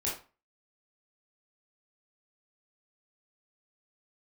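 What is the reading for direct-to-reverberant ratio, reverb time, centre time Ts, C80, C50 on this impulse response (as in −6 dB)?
−6.0 dB, 0.35 s, 35 ms, 11.0 dB, 5.0 dB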